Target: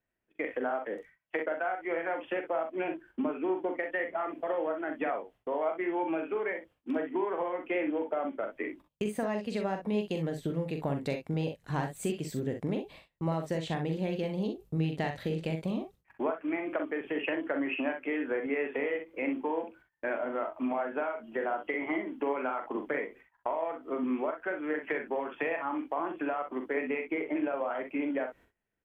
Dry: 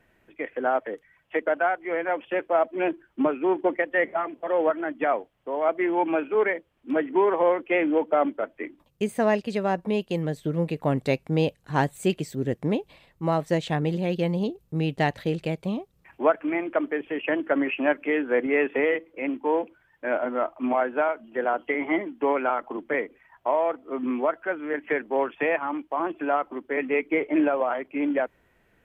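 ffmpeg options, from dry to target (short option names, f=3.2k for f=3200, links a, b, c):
-af "agate=range=-24dB:threshold=-49dB:ratio=16:detection=peak,acompressor=threshold=-30dB:ratio=6,aecho=1:1:43|62:0.447|0.335"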